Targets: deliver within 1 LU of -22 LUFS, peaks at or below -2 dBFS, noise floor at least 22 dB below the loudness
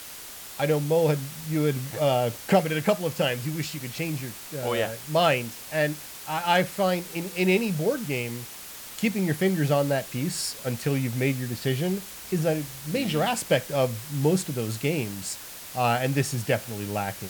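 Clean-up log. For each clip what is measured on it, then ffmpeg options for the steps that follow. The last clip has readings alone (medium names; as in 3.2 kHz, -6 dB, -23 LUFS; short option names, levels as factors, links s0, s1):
noise floor -41 dBFS; noise floor target -49 dBFS; loudness -26.5 LUFS; peak level -9.0 dBFS; loudness target -22.0 LUFS
-> -af "afftdn=nr=8:nf=-41"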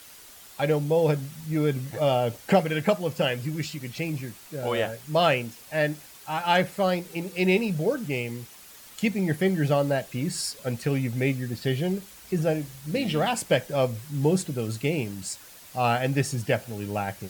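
noise floor -48 dBFS; noise floor target -49 dBFS
-> -af "afftdn=nr=6:nf=-48"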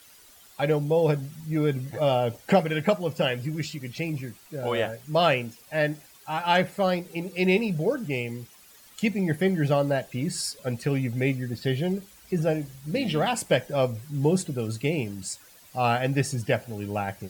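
noise floor -53 dBFS; loudness -26.5 LUFS; peak level -9.5 dBFS; loudness target -22.0 LUFS
-> -af "volume=1.68"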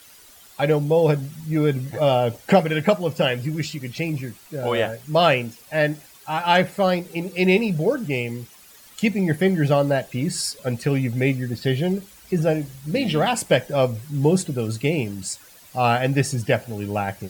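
loudness -22.0 LUFS; peak level -5.0 dBFS; noise floor -48 dBFS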